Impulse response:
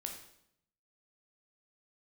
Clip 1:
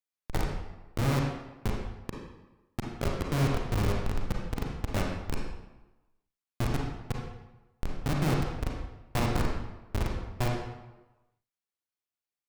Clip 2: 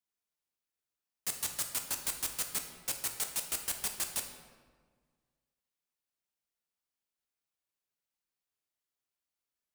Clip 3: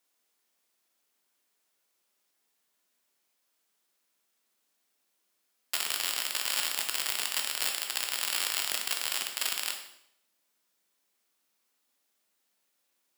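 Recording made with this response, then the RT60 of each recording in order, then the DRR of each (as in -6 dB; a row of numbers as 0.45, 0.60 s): 3; 1.1, 1.6, 0.75 s; -1.0, 4.0, 2.0 dB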